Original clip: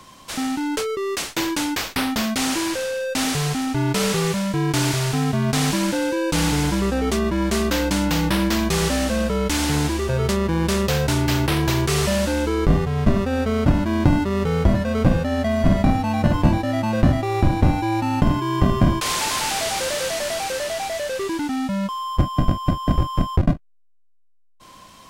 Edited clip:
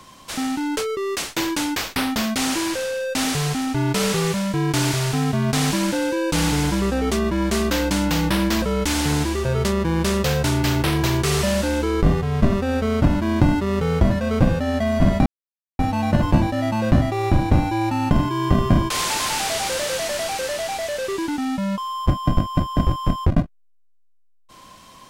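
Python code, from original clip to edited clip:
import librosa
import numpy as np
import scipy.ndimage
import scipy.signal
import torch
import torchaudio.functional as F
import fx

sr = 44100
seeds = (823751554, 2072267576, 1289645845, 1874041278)

y = fx.edit(x, sr, fx.cut(start_s=8.62, length_s=0.64),
    fx.insert_silence(at_s=15.9, length_s=0.53), tone=tone)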